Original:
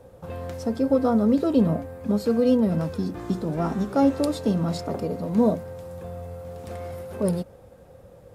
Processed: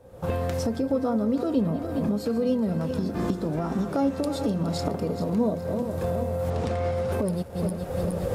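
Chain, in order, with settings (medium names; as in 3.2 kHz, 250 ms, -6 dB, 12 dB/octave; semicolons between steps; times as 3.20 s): backward echo that repeats 208 ms, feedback 60%, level -12 dB; recorder AGC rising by 54 dB/s; 6.50–7.12 s: low-pass 6 kHz 12 dB/octave; trim -5 dB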